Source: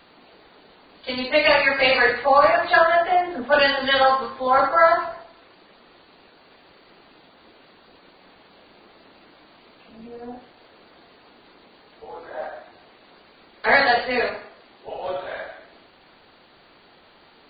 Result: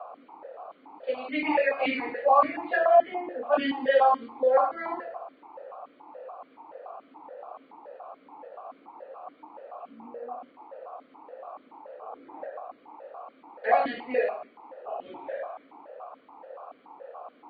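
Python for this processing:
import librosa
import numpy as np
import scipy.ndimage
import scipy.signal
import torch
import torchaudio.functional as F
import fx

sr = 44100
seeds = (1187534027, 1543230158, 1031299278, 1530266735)

y = fx.dmg_noise_band(x, sr, seeds[0], low_hz=470.0, high_hz=1300.0, level_db=-39.0)
y = fx.high_shelf(y, sr, hz=2000.0, db=-11.5)
y = fx.vowel_held(y, sr, hz=7.0)
y = y * librosa.db_to_amplitude(6.0)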